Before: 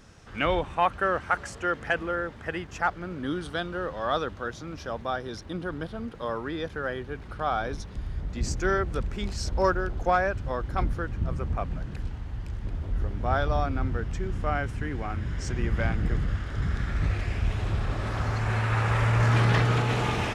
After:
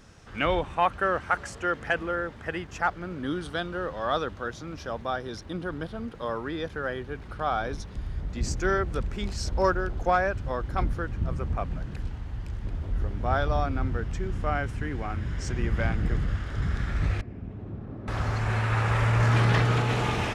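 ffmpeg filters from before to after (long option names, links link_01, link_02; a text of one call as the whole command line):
ffmpeg -i in.wav -filter_complex "[0:a]asettb=1/sr,asplit=3[link_01][link_02][link_03];[link_01]atrim=end=17.214[link_04];[link_02]atrim=start=17.21:end=18.08,asetpts=PTS-STARTPTS,afade=type=in:duration=0.004:curve=qsin,afade=type=out:start_time=0.866:duration=0.004:curve=qsin,bandpass=frequency=240:width_type=q:width=1.5[link_05];[link_03]atrim=start=18.076[link_06];[link_04][link_05]acrossfade=duration=0.004:curve1=hsin:curve2=qsin[link_07];[link_07][link_06]acrossfade=duration=0.004:curve1=qsin:curve2=hsin" out.wav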